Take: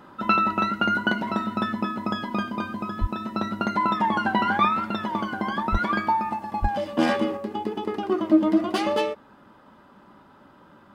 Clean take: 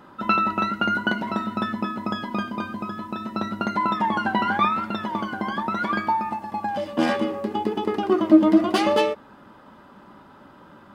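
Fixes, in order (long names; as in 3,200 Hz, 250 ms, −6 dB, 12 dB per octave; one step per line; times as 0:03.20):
0:03.00–0:03.12: high-pass filter 140 Hz 24 dB per octave
0:05.71–0:05.83: high-pass filter 140 Hz 24 dB per octave
0:06.61–0:06.73: high-pass filter 140 Hz 24 dB per octave
level 0 dB, from 0:07.37 +4 dB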